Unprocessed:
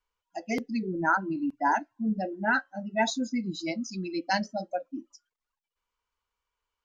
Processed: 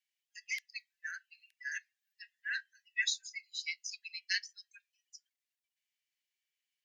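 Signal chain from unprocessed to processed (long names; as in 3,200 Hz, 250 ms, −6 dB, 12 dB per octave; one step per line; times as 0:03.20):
Butterworth high-pass 1,700 Hz 96 dB per octave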